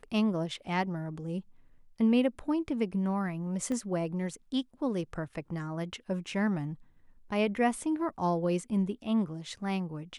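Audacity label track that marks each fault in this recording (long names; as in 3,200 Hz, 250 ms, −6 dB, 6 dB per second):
3.720000	3.720000	click −24 dBFS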